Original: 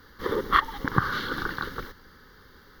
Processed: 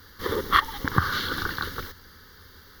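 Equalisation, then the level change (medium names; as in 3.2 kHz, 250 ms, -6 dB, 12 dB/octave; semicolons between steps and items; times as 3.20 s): peaking EQ 84 Hz +10.5 dB 0.47 oct; treble shelf 3.1 kHz +11.5 dB; -1.0 dB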